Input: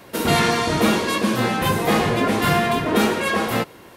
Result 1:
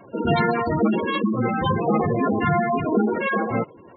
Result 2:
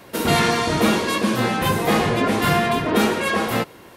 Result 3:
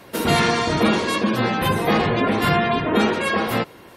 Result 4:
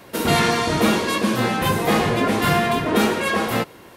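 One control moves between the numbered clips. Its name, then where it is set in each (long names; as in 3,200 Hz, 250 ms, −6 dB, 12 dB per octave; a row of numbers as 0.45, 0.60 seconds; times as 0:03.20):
gate on every frequency bin, under each frame's peak: −10, −45, −30, −55 decibels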